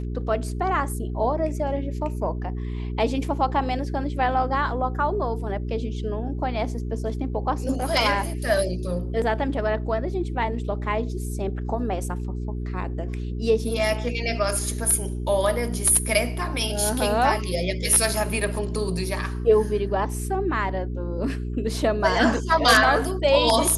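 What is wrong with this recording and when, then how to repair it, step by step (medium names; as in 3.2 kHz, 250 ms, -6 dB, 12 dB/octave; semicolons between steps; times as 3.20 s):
hum 60 Hz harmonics 7 -29 dBFS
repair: de-hum 60 Hz, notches 7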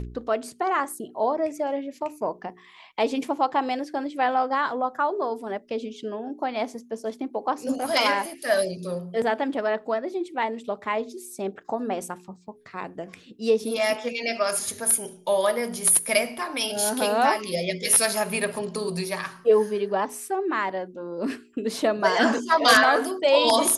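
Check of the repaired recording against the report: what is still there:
nothing left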